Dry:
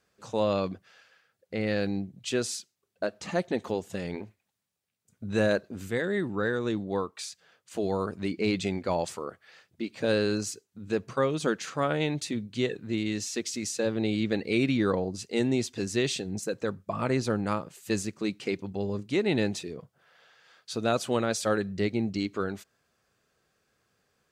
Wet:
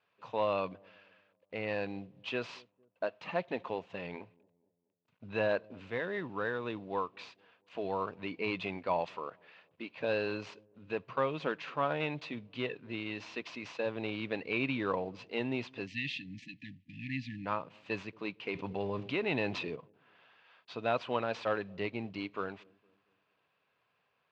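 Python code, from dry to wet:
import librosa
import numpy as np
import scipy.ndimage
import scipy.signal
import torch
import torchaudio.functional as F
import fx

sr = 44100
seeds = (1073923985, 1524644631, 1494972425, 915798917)

p1 = fx.cvsd(x, sr, bps=64000)
p2 = fx.spec_erase(p1, sr, start_s=15.87, length_s=1.59, low_hz=310.0, high_hz=1700.0)
p3 = fx.cabinet(p2, sr, low_hz=130.0, low_slope=12, high_hz=3700.0, hz=(210.0, 350.0, 660.0, 1000.0, 2600.0), db=(-7, -5, 3, 9, 8))
p4 = p3 + fx.echo_wet_lowpass(p3, sr, ms=229, feedback_pct=42, hz=560.0, wet_db=-24, dry=0)
p5 = fx.env_flatten(p4, sr, amount_pct=50, at=(18.55, 19.76))
y = F.gain(torch.from_numpy(p5), -6.0).numpy()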